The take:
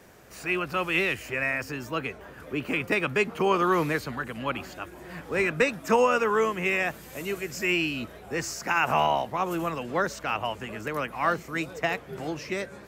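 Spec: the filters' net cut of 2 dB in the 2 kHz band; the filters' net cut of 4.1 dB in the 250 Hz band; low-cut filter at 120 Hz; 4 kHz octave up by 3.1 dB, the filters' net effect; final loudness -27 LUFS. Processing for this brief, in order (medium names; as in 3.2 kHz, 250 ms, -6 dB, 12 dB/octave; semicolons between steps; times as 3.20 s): high-pass 120 Hz; peaking EQ 250 Hz -6 dB; peaking EQ 2 kHz -5.5 dB; peaking EQ 4 kHz +8 dB; trim +2 dB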